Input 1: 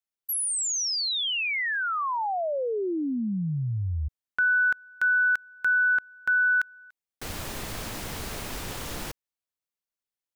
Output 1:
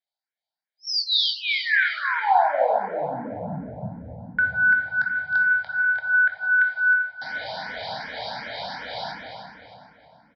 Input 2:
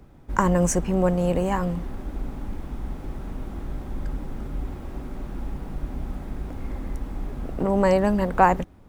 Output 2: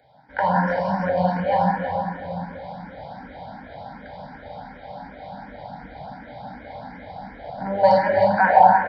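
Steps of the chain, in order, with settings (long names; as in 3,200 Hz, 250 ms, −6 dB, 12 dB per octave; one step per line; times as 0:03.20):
sub-octave generator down 1 octave, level −4 dB
high-pass filter 370 Hz 12 dB per octave
phaser with its sweep stopped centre 1,800 Hz, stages 8
comb filter 1.3 ms, depth 33%
on a send: delay that swaps between a low-pass and a high-pass 156 ms, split 990 Hz, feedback 61%, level −6 dB
on the sum: rectangular room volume 150 cubic metres, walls hard, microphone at 0.52 metres
downsampling to 11,025 Hz
boost into a limiter +5.5 dB
frequency shifter mixed with the dry sound +2.7 Hz
level +1 dB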